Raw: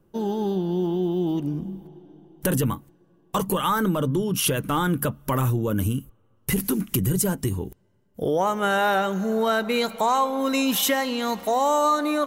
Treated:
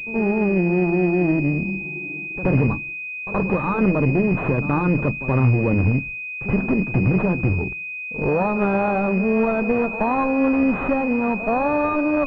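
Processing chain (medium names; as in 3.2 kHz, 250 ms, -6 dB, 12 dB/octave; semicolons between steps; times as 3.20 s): gate -48 dBFS, range -27 dB; one-sided clip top -30 dBFS, bottom -14.5 dBFS; bass shelf 430 Hz +5.5 dB; de-hum 166.6 Hz, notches 2; upward compressor, threshold -33 dBFS; pre-echo 75 ms -12.5 dB; class-D stage that switches slowly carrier 2.5 kHz; trim +3.5 dB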